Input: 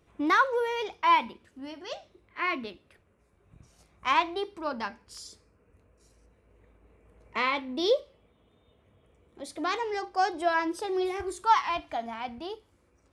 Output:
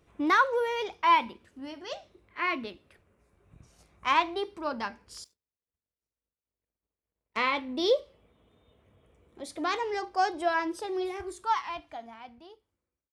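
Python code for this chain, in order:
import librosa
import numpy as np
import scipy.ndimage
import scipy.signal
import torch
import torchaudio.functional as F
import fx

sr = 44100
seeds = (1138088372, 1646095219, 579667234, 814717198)

y = fx.fade_out_tail(x, sr, length_s=3.02)
y = fx.power_curve(y, sr, exponent=2.0, at=(5.24, 7.37))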